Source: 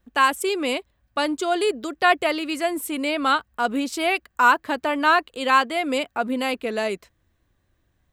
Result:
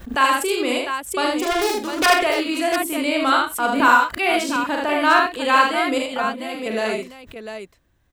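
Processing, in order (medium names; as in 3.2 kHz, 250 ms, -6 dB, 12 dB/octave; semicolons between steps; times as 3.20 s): 1.40–2.06 s: self-modulated delay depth 0.7 ms; 3.80–4.56 s: reverse; 5.98–6.66 s: level held to a coarse grid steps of 11 dB; multi-tap echo 41/77/99/126/132/700 ms -4/-3/-12.5/-15/-19/-8 dB; swell ahead of each attack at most 130 dB/s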